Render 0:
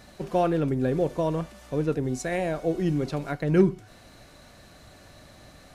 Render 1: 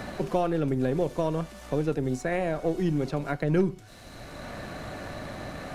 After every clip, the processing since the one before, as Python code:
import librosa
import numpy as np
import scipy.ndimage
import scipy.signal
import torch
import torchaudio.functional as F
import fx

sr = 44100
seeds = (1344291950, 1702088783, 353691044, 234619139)

y = np.where(x < 0.0, 10.0 ** (-3.0 / 20.0) * x, x)
y = fx.band_squash(y, sr, depth_pct=70)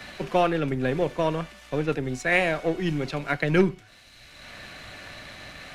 y = fx.peak_eq(x, sr, hz=2400.0, db=11.5, octaves=2.0)
y = fx.band_widen(y, sr, depth_pct=100)